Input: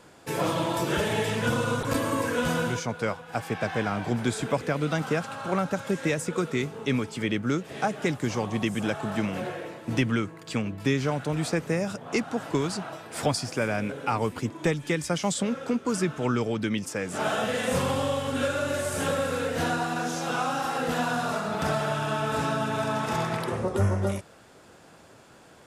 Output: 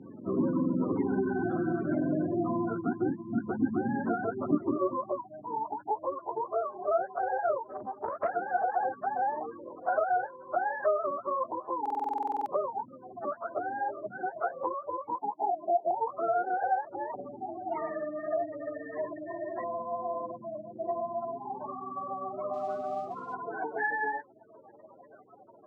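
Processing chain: spectrum inverted on a logarithmic axis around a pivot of 410 Hz; band-stop 490 Hz, Q 12; spectral gate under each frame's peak -20 dB strong; compression 3:1, threshold -38 dBFS, peak gain reduction 14 dB; high-pass sweep 250 Hz -> 640 Hz, 4.61–5.17 s; 15.15–15.91 s: Chebyshev band-pass 150–1100 Hz, order 5; 22.53–23.34 s: modulation noise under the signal 24 dB; distance through air 130 m; buffer glitch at 11.81 s, samples 2048, times 13; 7.64–8.29 s: loudspeaker Doppler distortion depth 0.26 ms; trim +7 dB

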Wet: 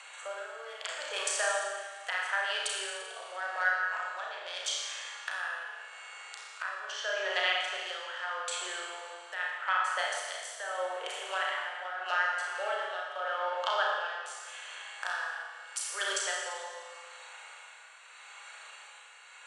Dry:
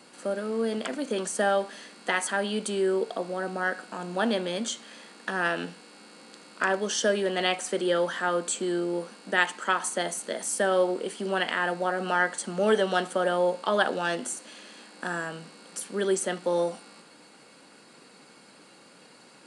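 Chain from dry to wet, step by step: local Wiener filter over 9 samples; Bessel high-pass 950 Hz, order 8; low-pass that closes with the level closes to 2.1 kHz, closed at -29 dBFS; low-pass 10 kHz 24 dB/octave; tilt EQ +3 dB/octave; compression 2:1, threshold -33 dBFS, peak gain reduction 8.5 dB; tremolo 0.81 Hz, depth 75%; on a send: flutter echo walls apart 5.7 m, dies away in 0.36 s; on the sum: Schroeder reverb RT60 1.5 s, DRR -0.5 dB; tape noise reduction on one side only encoder only; trim +3 dB

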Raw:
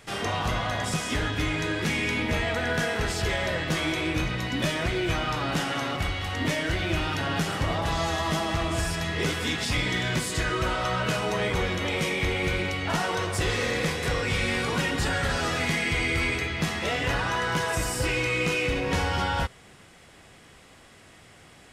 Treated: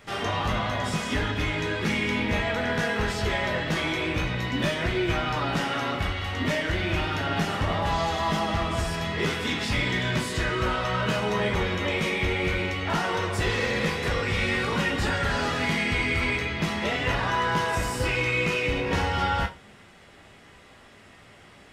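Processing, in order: peaking EQ 10 kHz -8 dB 1.8 oct; on a send: high-pass 370 Hz 6 dB/octave + reverberation RT60 0.25 s, pre-delay 5 ms, DRR 2 dB

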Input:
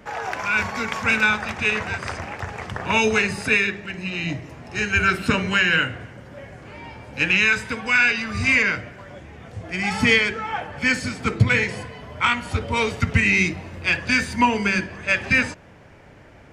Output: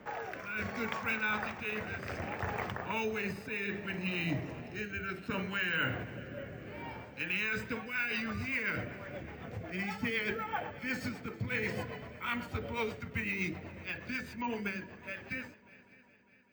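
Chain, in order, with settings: fade out at the end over 5.35 s; high-pass 130 Hz 6 dB/octave; treble shelf 3.7 kHz -9.5 dB; reverse; compression 6:1, threshold -30 dBFS, peak gain reduction 15.5 dB; reverse; rotary cabinet horn 0.65 Hz, later 8 Hz, at 7.35 s; on a send: multi-head delay 201 ms, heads second and third, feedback 53%, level -23 dB; on the sum: careless resampling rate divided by 2×, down filtered, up hold; endings held to a fixed fall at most 120 dB/s

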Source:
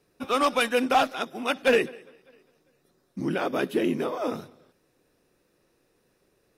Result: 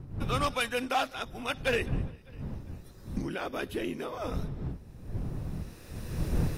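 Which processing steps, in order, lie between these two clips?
recorder AGC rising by 15 dB/s; wind noise 130 Hz -26 dBFS; tilt shelf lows -3 dB; trim -7 dB

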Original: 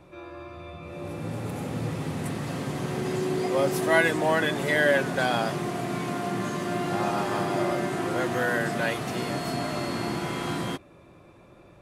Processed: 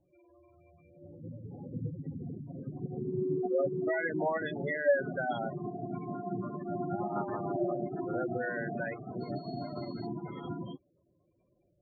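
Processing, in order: spectral gate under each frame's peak -10 dB strong; peak limiter -21 dBFS, peak gain reduction 9.5 dB; upward expansion 2.5:1, over -39 dBFS; trim +3.5 dB

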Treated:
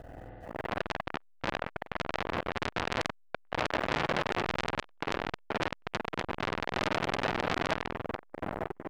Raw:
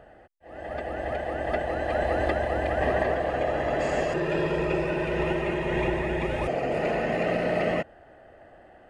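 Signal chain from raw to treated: octave divider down 1 oct, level -3 dB; feedback echo behind a low-pass 474 ms, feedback 83%, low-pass 1.1 kHz, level -21 dB; companded quantiser 6-bit; compression 10:1, threshold -33 dBFS, peak gain reduction 13.5 dB; treble shelf 6.4 kHz -7 dB; level rider gain up to 7.5 dB; bass shelf 290 Hz +10 dB; hum notches 60/120/180/240/300/360/420/480/540/600 Hz; reverberation RT60 1.8 s, pre-delay 48 ms, DRR -2 dB; transformer saturation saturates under 3.5 kHz; trim +1.5 dB

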